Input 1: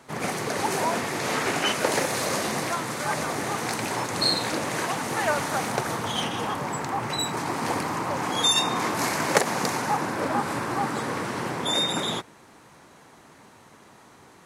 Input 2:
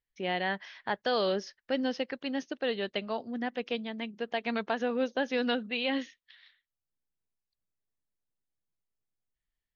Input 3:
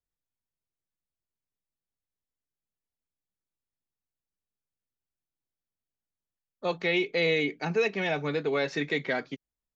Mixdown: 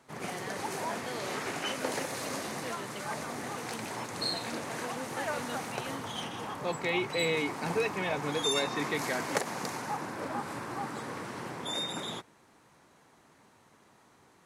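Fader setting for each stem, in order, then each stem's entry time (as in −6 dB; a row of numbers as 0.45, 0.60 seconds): −10.0, −12.0, −4.5 decibels; 0.00, 0.00, 0.00 seconds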